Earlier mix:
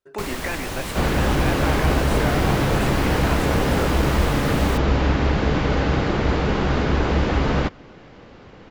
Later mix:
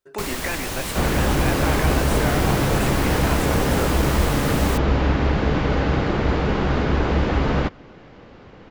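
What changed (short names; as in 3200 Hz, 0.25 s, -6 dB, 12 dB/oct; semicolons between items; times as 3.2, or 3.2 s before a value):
second sound: add LPF 2700 Hz 6 dB/oct; master: add high shelf 4400 Hz +6 dB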